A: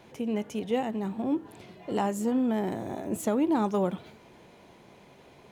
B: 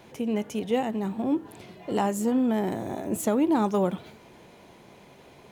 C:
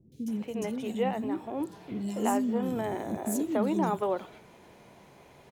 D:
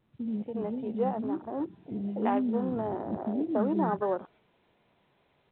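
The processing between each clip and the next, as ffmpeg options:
-af "highshelf=f=8500:g=4.5,volume=1.33"
-filter_complex "[0:a]acrossover=split=300|3600[s0][s1][s2];[s2]adelay=120[s3];[s1]adelay=280[s4];[s0][s4][s3]amix=inputs=3:normalize=0,volume=0.794"
-af "afwtdn=0.0126" -ar 8000 -c:a pcm_alaw

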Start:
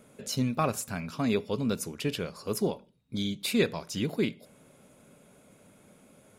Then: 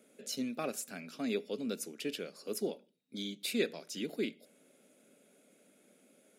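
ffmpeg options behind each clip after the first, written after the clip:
-af "highpass=f=230:w=0.5412,highpass=f=230:w=1.3066,equalizer=f=1000:t=o:w=0.6:g=-14,volume=0.562"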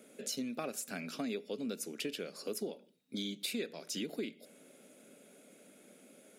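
-af "acompressor=threshold=0.00794:ratio=5,volume=2"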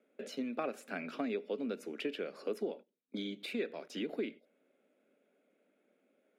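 -filter_complex "[0:a]agate=range=0.158:threshold=0.00316:ratio=16:detection=peak,acrossover=split=210 2900:gain=0.112 1 0.0891[s0][s1][s2];[s0][s1][s2]amix=inputs=3:normalize=0,volume=1.5"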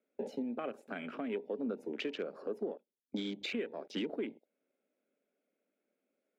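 -af "afwtdn=0.00355,alimiter=level_in=2.99:limit=0.0631:level=0:latency=1:release=449,volume=0.335,volume=2"

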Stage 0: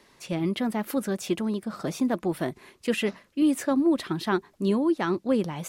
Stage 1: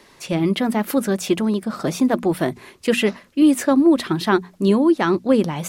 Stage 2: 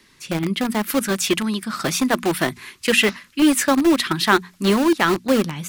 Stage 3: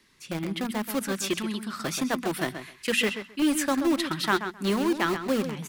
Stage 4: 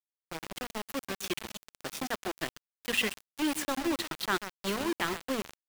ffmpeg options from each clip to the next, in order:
-af "bandreject=f=60:t=h:w=6,bandreject=f=120:t=h:w=6,bandreject=f=180:t=h:w=6,bandreject=f=240:t=h:w=6,volume=2.51"
-filter_complex "[0:a]acrossover=split=380|1100[s0][s1][s2];[s1]acrusher=bits=3:mix=0:aa=0.000001[s3];[s2]dynaudnorm=f=390:g=5:m=3.76[s4];[s0][s3][s4]amix=inputs=3:normalize=0,volume=0.794"
-filter_complex "[0:a]asplit=2[s0][s1];[s1]adelay=131,lowpass=f=4200:p=1,volume=0.355,asplit=2[s2][s3];[s3]adelay=131,lowpass=f=4200:p=1,volume=0.16[s4];[s0][s2][s4]amix=inputs=3:normalize=0,volume=0.376"
-af "adynamicequalizer=threshold=0.00891:dfrequency=2800:dqfactor=0.77:tfrequency=2800:tqfactor=0.77:attack=5:release=100:ratio=0.375:range=2:mode=boostabove:tftype=bell,aeval=exprs='val(0)*gte(abs(val(0)),0.0631)':c=same,volume=0.473"

